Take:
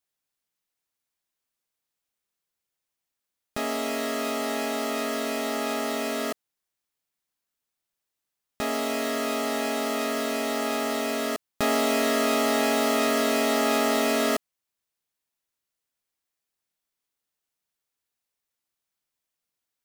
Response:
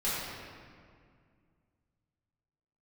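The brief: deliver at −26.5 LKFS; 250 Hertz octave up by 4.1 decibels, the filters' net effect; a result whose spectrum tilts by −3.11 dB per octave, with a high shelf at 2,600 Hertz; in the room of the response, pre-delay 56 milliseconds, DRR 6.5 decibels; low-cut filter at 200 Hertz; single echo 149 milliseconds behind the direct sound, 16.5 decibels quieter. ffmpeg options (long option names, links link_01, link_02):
-filter_complex "[0:a]highpass=200,equalizer=frequency=250:width_type=o:gain=6,highshelf=frequency=2600:gain=-4.5,aecho=1:1:149:0.15,asplit=2[link_01][link_02];[1:a]atrim=start_sample=2205,adelay=56[link_03];[link_02][link_03]afir=irnorm=-1:irlink=0,volume=-15dB[link_04];[link_01][link_04]amix=inputs=2:normalize=0,volume=-2dB"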